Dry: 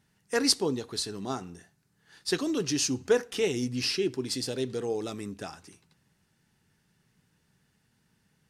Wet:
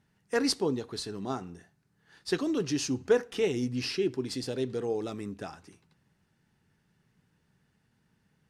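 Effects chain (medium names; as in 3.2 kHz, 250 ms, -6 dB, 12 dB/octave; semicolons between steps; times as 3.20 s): treble shelf 3.5 kHz -9 dB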